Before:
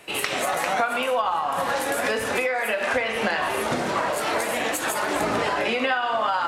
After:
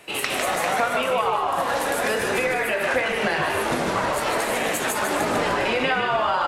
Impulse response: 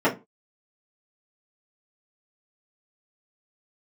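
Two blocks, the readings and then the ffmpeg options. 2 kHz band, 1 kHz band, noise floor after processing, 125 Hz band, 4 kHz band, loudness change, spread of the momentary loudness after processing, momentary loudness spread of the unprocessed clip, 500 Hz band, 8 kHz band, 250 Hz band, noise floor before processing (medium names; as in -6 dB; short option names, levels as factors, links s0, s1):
+1.5 dB, +1.0 dB, -27 dBFS, +4.0 dB, +1.5 dB, +1.5 dB, 2 LU, 2 LU, +1.5 dB, +1.5 dB, +1.5 dB, -28 dBFS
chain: -filter_complex "[0:a]asplit=7[s0][s1][s2][s3][s4][s5][s6];[s1]adelay=152,afreqshift=-57,volume=0.562[s7];[s2]adelay=304,afreqshift=-114,volume=0.26[s8];[s3]adelay=456,afreqshift=-171,volume=0.119[s9];[s4]adelay=608,afreqshift=-228,volume=0.055[s10];[s5]adelay=760,afreqshift=-285,volume=0.0251[s11];[s6]adelay=912,afreqshift=-342,volume=0.0116[s12];[s0][s7][s8][s9][s10][s11][s12]amix=inputs=7:normalize=0"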